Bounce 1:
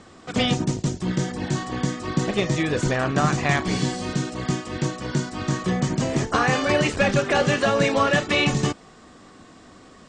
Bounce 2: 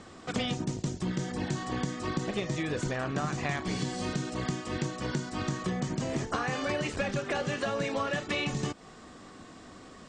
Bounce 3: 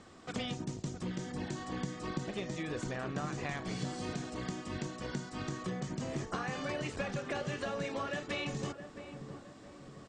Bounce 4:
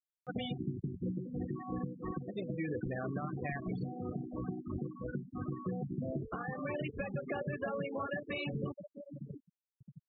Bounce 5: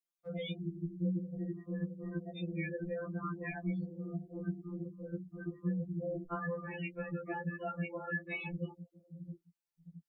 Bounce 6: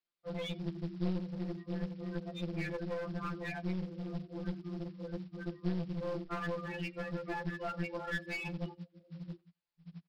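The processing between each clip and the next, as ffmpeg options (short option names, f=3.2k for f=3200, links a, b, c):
-af "acompressor=threshold=-27dB:ratio=6,volume=-1.5dB"
-filter_complex "[0:a]asplit=2[a][b];[b]adelay=667,lowpass=f=910:p=1,volume=-8dB,asplit=2[c][d];[d]adelay=667,lowpass=f=910:p=1,volume=0.51,asplit=2[e][f];[f]adelay=667,lowpass=f=910:p=1,volume=0.51,asplit=2[g][h];[h]adelay=667,lowpass=f=910:p=1,volume=0.51,asplit=2[i][j];[j]adelay=667,lowpass=f=910:p=1,volume=0.51,asplit=2[k][l];[l]adelay=667,lowpass=f=910:p=1,volume=0.51[m];[a][c][e][g][i][k][m]amix=inputs=7:normalize=0,volume=-6.5dB"
-af "afftfilt=real='re*gte(hypot(re,im),0.0282)':imag='im*gte(hypot(re,im),0.0282)':win_size=1024:overlap=0.75,acompressor=mode=upward:threshold=-54dB:ratio=2.5,alimiter=level_in=6dB:limit=-24dB:level=0:latency=1:release=460,volume=-6dB,volume=3dB"
-af "afftfilt=real='re*2.83*eq(mod(b,8),0)':imag='im*2.83*eq(mod(b,8),0)':win_size=2048:overlap=0.75,volume=2.5dB"
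-filter_complex "[0:a]aresample=11025,acrusher=bits=5:mode=log:mix=0:aa=0.000001,aresample=44100,asplit=2[a][b];[b]adelay=90,highpass=300,lowpass=3.4k,asoftclip=type=hard:threshold=-34.5dB,volume=-23dB[c];[a][c]amix=inputs=2:normalize=0,aeval=exprs='clip(val(0),-1,0.00794)':c=same,volume=2.5dB"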